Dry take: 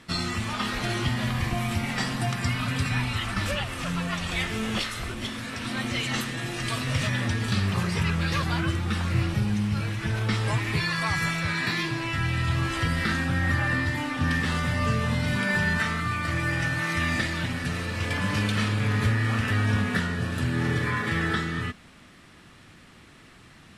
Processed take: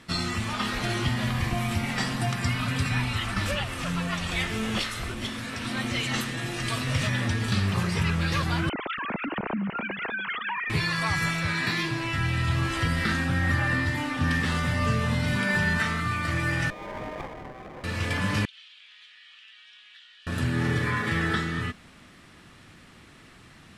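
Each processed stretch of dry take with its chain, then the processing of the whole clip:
8.69–10.70 s: formants replaced by sine waves + compression, threshold -27 dBFS + filtered feedback delay 293 ms, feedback 49%, low-pass 2.5 kHz, level -12 dB
16.70–17.84 s: steep high-pass 1.9 kHz 72 dB/octave + frequency inversion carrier 3 kHz + sliding maximum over 17 samples
18.45–20.27 s: ladder band-pass 3.6 kHz, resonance 60% + treble shelf 4.8 kHz -7.5 dB + compression 3:1, threshold -48 dBFS
whole clip: none

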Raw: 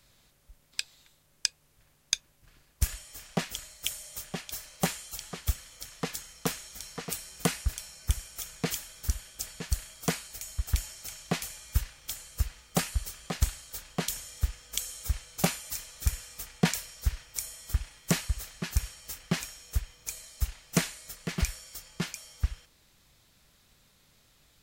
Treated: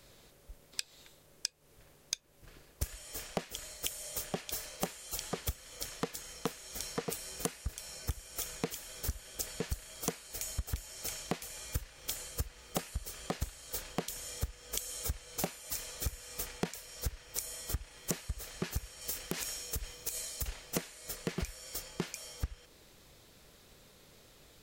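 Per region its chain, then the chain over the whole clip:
19.01–20.46 s: treble shelf 3.7 kHz +6 dB + compression 12:1, threshold -32 dBFS + integer overflow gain 18.5 dB
whole clip: peaking EQ 440 Hz +9.5 dB 1.2 oct; compression 16:1, threshold -35 dBFS; trim +3 dB

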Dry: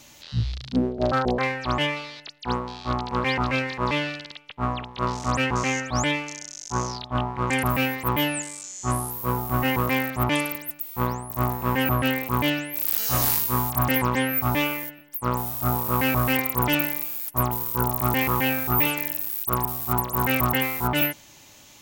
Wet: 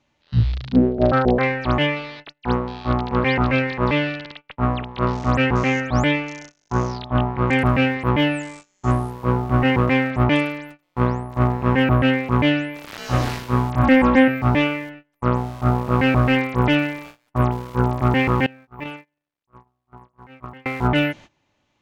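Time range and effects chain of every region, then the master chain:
13.83–14.28 s: treble shelf 11 kHz -6.5 dB + comb 3.7 ms, depth 88%
18.46–20.66 s: gate -18 dBFS, range -24 dB + decay stretcher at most 86 dB/s
whole clip: Bessel low-pass 2.1 kHz, order 2; gate -46 dBFS, range -21 dB; dynamic bell 1 kHz, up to -6 dB, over -42 dBFS, Q 1.9; trim +7.5 dB

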